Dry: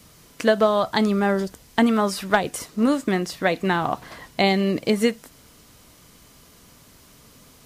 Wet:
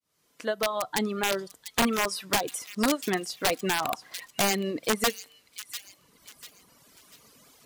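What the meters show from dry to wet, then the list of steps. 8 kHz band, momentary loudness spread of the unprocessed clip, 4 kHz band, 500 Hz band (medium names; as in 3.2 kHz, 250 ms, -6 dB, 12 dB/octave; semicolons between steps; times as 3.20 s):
+5.0 dB, 8 LU, -0.5 dB, -8.0 dB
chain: fade-in on the opening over 1.28 s; bass shelf 180 Hz -10.5 dB; feedback comb 150 Hz, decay 0.93 s, harmonics odd, mix 40%; integer overflow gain 18 dB; bass shelf 72 Hz -6.5 dB; feedback echo behind a high-pass 694 ms, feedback 36%, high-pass 2.6 kHz, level -8.5 dB; wow and flutter 26 cents; reverb removal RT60 1.3 s; trim +2.5 dB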